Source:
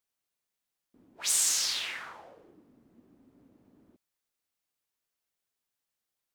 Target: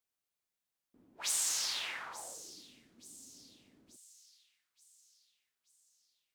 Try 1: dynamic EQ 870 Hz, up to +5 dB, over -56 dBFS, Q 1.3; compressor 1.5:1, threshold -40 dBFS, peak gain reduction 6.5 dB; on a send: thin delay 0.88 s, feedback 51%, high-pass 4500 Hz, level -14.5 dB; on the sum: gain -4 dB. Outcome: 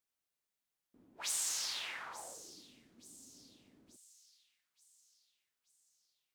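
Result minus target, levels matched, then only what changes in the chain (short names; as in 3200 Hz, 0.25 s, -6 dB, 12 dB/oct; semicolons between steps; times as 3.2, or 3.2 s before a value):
compressor: peak gain reduction +3.5 dB
change: compressor 1.5:1, threshold -30 dBFS, peak gain reduction 3 dB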